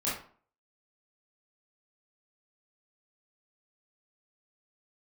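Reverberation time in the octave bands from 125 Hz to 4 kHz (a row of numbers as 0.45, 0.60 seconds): 0.45, 0.50, 0.45, 0.45, 0.40, 0.30 seconds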